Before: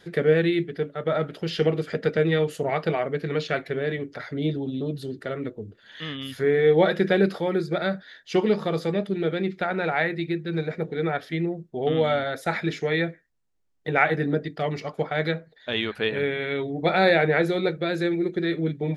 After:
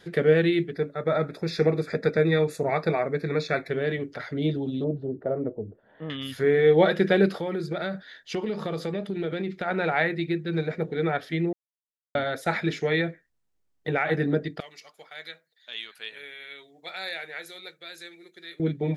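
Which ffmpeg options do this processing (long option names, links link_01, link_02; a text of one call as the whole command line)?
ffmpeg -i in.wav -filter_complex "[0:a]asettb=1/sr,asplit=3[link_01][link_02][link_03];[link_01]atrim=end=0.734[link_04];[link_02]atrim=start=0.73:end=3.7,asetpts=PTS-STARTPTS,afade=type=in:duration=0.004:curve=qsin,afade=type=out:start_time=2.966:duration=0.004:curve=qsin,asuperstop=centerf=3000:order=8:qfactor=3.6[link_05];[link_03]atrim=start=3.696[link_06];[link_04][link_05]acrossfade=duration=0.004:curve1=hsin:curve2=qsin[link_07];[link_07][link_06]acrossfade=duration=0.004:curve1=qsin:curve2=hsin,asettb=1/sr,asplit=3[link_08][link_09][link_10];[link_08]atrim=end=4.844[link_11];[link_09]atrim=start=4.84:end=6.1,asetpts=PTS-STARTPTS,afade=type=in:duration=0.004:curve=qsin,afade=type=out:start_time=1.256:duration=0.004:curve=qsin,lowpass=frequency=700:width_type=q:width=1.9[link_12];[link_10]atrim=start=6.096[link_13];[link_11][link_12]acrossfade=duration=0.004:curve1=hsin:curve2=qsin[link_14];[link_14][link_13]acrossfade=duration=0.004:curve1=qsin:curve2=hsin,asplit=3[link_15][link_16][link_17];[link_15]afade=type=out:start_time=7.38:duration=0.02[link_18];[link_16]acompressor=threshold=-25dB:ratio=6:attack=3.2:release=140:knee=1:detection=peak,afade=type=in:start_time=7.38:duration=0.02,afade=type=out:start_time=9.66:duration=0.02[link_19];[link_17]afade=type=in:start_time=9.66:duration=0.02[link_20];[link_18][link_19][link_20]amix=inputs=3:normalize=0,asettb=1/sr,asplit=3[link_21][link_22][link_23];[link_21]atrim=end=13.004[link_24];[link_22]atrim=start=13:end=14.09,asetpts=PTS-STARTPTS,afade=type=in:duration=0.004:curve=qsin,afade=type=out:start_time=1.086:duration=0.004:curve=qsin,acompressor=threshold=-20dB:ratio=6:attack=3.2:release=140:knee=1:detection=peak[link_25];[link_23]atrim=start=14.086[link_26];[link_24][link_25]acrossfade=duration=0.004:curve1=hsin:curve2=qsin[link_27];[link_27][link_26]acrossfade=duration=0.004:curve1=qsin:curve2=hsin,asettb=1/sr,asplit=3[link_28][link_29][link_30];[link_28]atrim=end=14.604[link_31];[link_29]atrim=start=14.6:end=18.6,asetpts=PTS-STARTPTS,afade=type=in:duration=0.004:curve=qsin,afade=type=out:start_time=3.996:duration=0.004:curve=qsin,aderivative[link_32];[link_30]atrim=start=18.596[link_33];[link_31][link_32]acrossfade=duration=0.004:curve1=hsin:curve2=qsin[link_34];[link_34][link_33]acrossfade=duration=0.004:curve1=qsin:curve2=hsin,asplit=3[link_35][link_36][link_37];[link_35]atrim=end=11.53,asetpts=PTS-STARTPTS,afade=type=out:start_time=11.526:duration=0.004:curve=hsin[link_38];[link_36]atrim=start=11.53:end=12.15,asetpts=PTS-STARTPTS,volume=0[link_39];[link_37]atrim=start=12.15,asetpts=PTS-STARTPTS,afade=type=in:duration=0.004:curve=hsin[link_40];[link_38][link_39][link_40]concat=n=3:v=0:a=1" out.wav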